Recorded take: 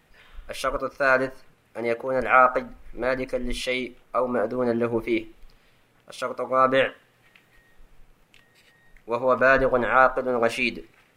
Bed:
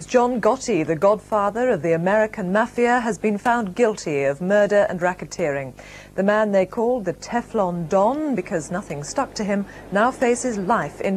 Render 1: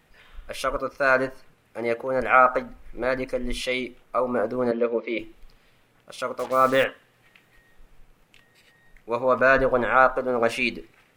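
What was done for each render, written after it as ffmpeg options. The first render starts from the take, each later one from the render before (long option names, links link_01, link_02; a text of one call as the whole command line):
ffmpeg -i in.wav -filter_complex "[0:a]asettb=1/sr,asplit=3[link_01][link_02][link_03];[link_01]atrim=end=4.714[link_04];[link_02]atrim=start=4.71:end=5.19,asetpts=PTS-STARTPTS,afade=type=in:duration=0.004:curve=qsin,afade=type=out:start_time=0.476:duration=0.004:curve=qsin,highpass=frequency=230:width=0.5412,highpass=frequency=230:width=1.3066,equalizer=frequency=330:width_type=q:width=4:gain=-7,equalizer=frequency=530:width_type=q:width=4:gain=8,equalizer=frequency=790:width_type=q:width=4:gain=-10,equalizer=frequency=1600:width_type=q:width=4:gain=-5,lowpass=frequency=4500:width=0.5412,lowpass=frequency=4500:width=1.3066[link_05];[link_03]atrim=start=5.186[link_06];[link_04][link_05]acrossfade=duration=0.004:curve1=hsin:curve2=qsin[link_07];[link_07][link_06]acrossfade=duration=0.004:curve1=qsin:curve2=hsin,asettb=1/sr,asplit=3[link_08][link_09][link_10];[link_08]atrim=end=6.394[link_11];[link_09]atrim=start=6.39:end=6.84,asetpts=PTS-STARTPTS,afade=type=in:duration=0.004:curve=qsin,afade=type=out:start_time=0.446:duration=0.004:curve=qsin,acrusher=bits=5:mix=0:aa=0.5[link_12];[link_10]atrim=start=6.836[link_13];[link_11][link_12]acrossfade=duration=0.004:curve1=hsin:curve2=qsin[link_14];[link_14][link_13]acrossfade=duration=0.004:curve1=qsin:curve2=hsin" out.wav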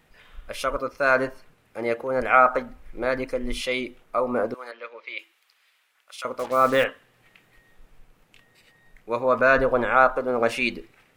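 ffmpeg -i in.wav -filter_complex "[0:a]asettb=1/sr,asplit=3[link_01][link_02][link_03];[link_01]atrim=end=4.544[link_04];[link_02]atrim=start=4.54:end=6.25,asetpts=PTS-STARTPTS,afade=type=in:duration=0.004:curve=qsin,afade=type=out:start_time=1.706:duration=0.004:curve=qsin,highpass=1400[link_05];[link_03]atrim=start=6.246[link_06];[link_04][link_05]acrossfade=duration=0.004:curve1=hsin:curve2=qsin[link_07];[link_07][link_06]acrossfade=duration=0.004:curve1=qsin:curve2=hsin" out.wav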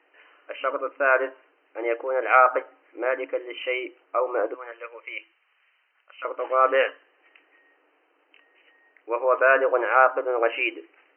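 ffmpeg -i in.wav -af "afftfilt=real='re*between(b*sr/4096,270,3100)':imag='im*between(b*sr/4096,270,3100)':win_size=4096:overlap=0.75" out.wav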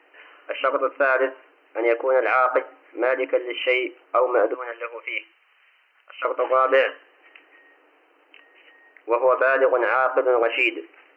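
ffmpeg -i in.wav -af "alimiter=limit=-15dB:level=0:latency=1:release=99,acontrast=73" out.wav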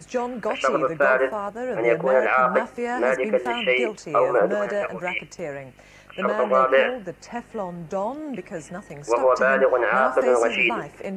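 ffmpeg -i in.wav -i bed.wav -filter_complex "[1:a]volume=-9dB[link_01];[0:a][link_01]amix=inputs=2:normalize=0" out.wav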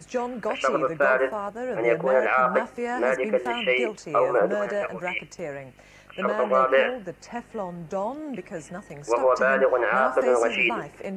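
ffmpeg -i in.wav -af "volume=-2dB" out.wav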